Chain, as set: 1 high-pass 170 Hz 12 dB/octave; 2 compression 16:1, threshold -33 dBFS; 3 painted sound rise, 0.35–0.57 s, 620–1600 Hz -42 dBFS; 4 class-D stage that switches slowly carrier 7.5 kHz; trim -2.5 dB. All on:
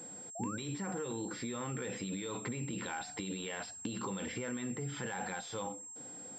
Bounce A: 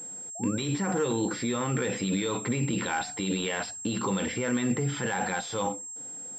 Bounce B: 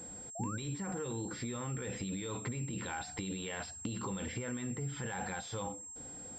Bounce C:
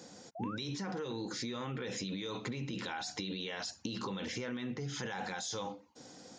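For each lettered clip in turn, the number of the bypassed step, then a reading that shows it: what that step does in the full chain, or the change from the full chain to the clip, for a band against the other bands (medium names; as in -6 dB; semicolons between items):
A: 2, mean gain reduction 9.0 dB; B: 1, 125 Hz band +4.0 dB; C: 4, 4 kHz band +6.0 dB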